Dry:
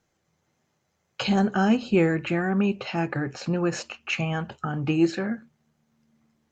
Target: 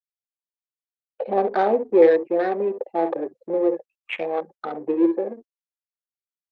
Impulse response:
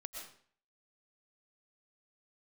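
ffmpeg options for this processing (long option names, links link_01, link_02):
-af "aecho=1:1:54|66:0.158|0.316,afftfilt=real='re*gte(hypot(re,im),0.0562)':imag='im*gte(hypot(re,im),0.0562)':win_size=1024:overlap=0.75,afwtdn=0.0316,adynamicsmooth=sensitivity=3:basefreq=760,highpass=frequency=380:width=0.5412,highpass=frequency=380:width=1.3066,equalizer=frequency=500:width_type=q:width=4:gain=7,equalizer=frequency=1400:width_type=q:width=4:gain=-10,equalizer=frequency=2900:width_type=q:width=4:gain=-9,lowpass=frequency=3800:width=0.5412,lowpass=frequency=3800:width=1.3066,volume=7dB" -ar 48000 -c:a libopus -b:a 48k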